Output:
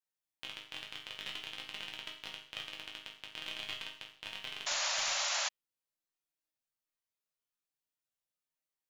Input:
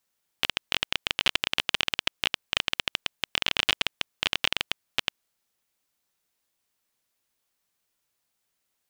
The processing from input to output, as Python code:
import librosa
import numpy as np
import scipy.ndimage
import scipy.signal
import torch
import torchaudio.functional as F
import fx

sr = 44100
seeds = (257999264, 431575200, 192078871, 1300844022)

y = fx.resonator_bank(x, sr, root=44, chord='major', decay_s=0.53)
y = fx.spec_paint(y, sr, seeds[0], shape='noise', start_s=4.66, length_s=0.83, low_hz=530.0, high_hz=7300.0, level_db=-34.0)